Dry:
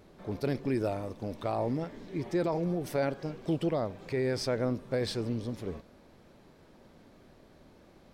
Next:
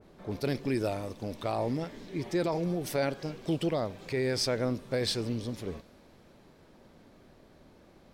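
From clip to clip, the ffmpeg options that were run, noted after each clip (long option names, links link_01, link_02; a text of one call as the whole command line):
ffmpeg -i in.wav -af "adynamicequalizer=threshold=0.00316:dfrequency=2100:dqfactor=0.7:tfrequency=2100:tqfactor=0.7:attack=5:release=100:ratio=0.375:range=3.5:mode=boostabove:tftype=highshelf" out.wav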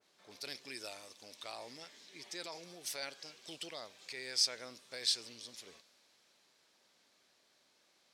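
ffmpeg -i in.wav -af "bandpass=frequency=6100:width_type=q:width=0.89:csg=0,volume=2dB" out.wav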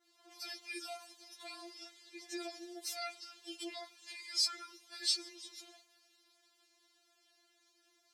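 ffmpeg -i in.wav -af "afftfilt=real='re*4*eq(mod(b,16),0)':imag='im*4*eq(mod(b,16),0)':win_size=2048:overlap=0.75,volume=2dB" out.wav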